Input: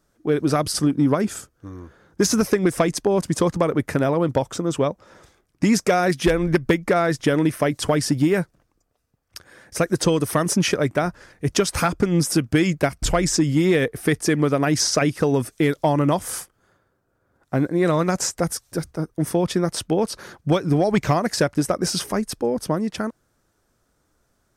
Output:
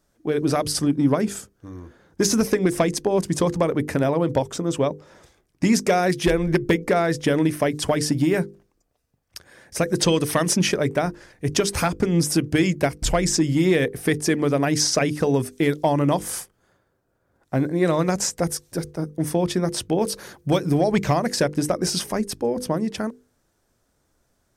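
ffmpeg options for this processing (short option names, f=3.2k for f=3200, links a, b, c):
-filter_complex "[0:a]asettb=1/sr,asplit=3[a][b][c];[a]atrim=end=9.994[d];[b]atrim=start=9.99:end=10.6,asetpts=PTS-STARTPTS,afade=t=in:d=0.004:c=qsin,afade=t=out:st=0.606:d=0.004:c=qsin,equalizer=f=3.1k:w=0.62:g=5.5[e];[c]atrim=start=10.596[f];[d][e]acrossfade=d=0.004:c1=hsin:c2=qsin[g];[g][f]acrossfade=d=0.004:c1=qsin:c2=hsin,asettb=1/sr,asplit=3[h][i][j];[h]atrim=end=20.004[k];[i]atrim=start=20:end=20.81,asetpts=PTS-STARTPTS,afade=t=in:d=0.004:c=qsin,afade=t=out:st=0.806:d=0.004:c=qsin,highshelf=f=10k:g=11[l];[j]atrim=start=20.806[m];[k][l]acrossfade=d=0.004:c1=hsin:c2=qsin[n];[n][m]acrossfade=d=0.004:c1=qsin:c2=hsin,equalizer=f=1.3k:w=2.8:g=-4.5,bandreject=f=50:t=h:w=6,bandreject=f=100:t=h:w=6,bandreject=f=150:t=h:w=6,bandreject=f=200:t=h:w=6,bandreject=f=250:t=h:w=6,bandreject=f=300:t=h:w=6,bandreject=f=350:t=h:w=6,bandreject=f=400:t=h:w=6,bandreject=f=450:t=h:w=6,bandreject=f=500:t=h:w=6"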